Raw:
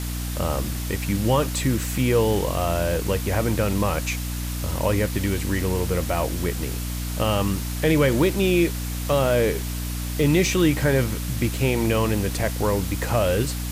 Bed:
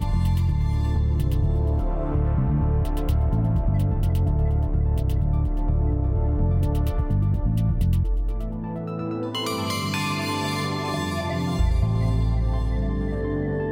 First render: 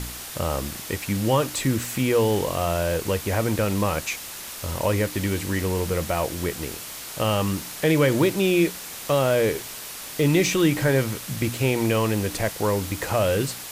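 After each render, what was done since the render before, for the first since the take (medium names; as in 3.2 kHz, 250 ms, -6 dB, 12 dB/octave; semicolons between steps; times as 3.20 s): de-hum 60 Hz, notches 5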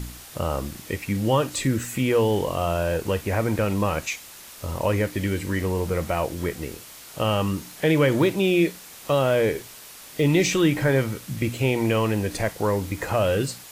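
noise print and reduce 7 dB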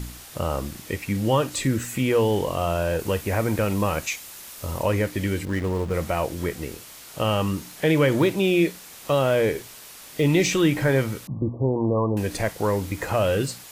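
2.99–4.83 s: treble shelf 8.2 kHz +5 dB; 5.45–5.94 s: hysteresis with a dead band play -29.5 dBFS; 11.27–12.17 s: brick-wall FIR low-pass 1.2 kHz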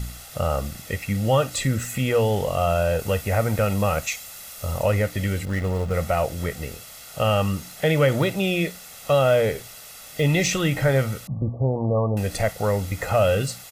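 comb 1.5 ms, depth 61%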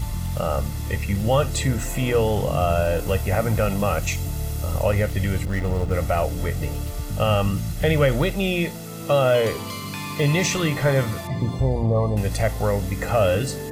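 add bed -6 dB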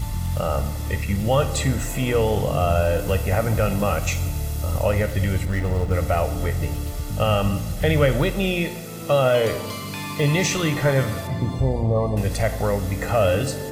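plate-style reverb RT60 1.4 s, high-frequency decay 0.85×, DRR 10.5 dB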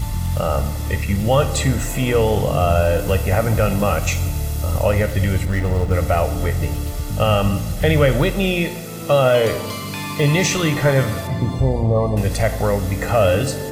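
trim +3.5 dB; peak limiter -3 dBFS, peak gain reduction 1 dB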